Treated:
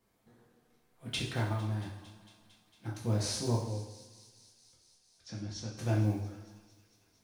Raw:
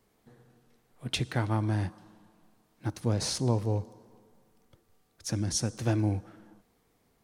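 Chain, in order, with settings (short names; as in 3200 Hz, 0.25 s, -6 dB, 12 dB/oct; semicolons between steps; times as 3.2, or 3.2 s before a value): block floating point 7-bit; 1.52–2.93 compressor, threshold -30 dBFS, peak gain reduction 7.5 dB; 3.56–5.78 ladder low-pass 5500 Hz, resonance 30%; thin delay 0.227 s, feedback 78%, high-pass 3100 Hz, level -16 dB; two-slope reverb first 0.65 s, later 1.8 s, DRR -3.5 dB; gain -8 dB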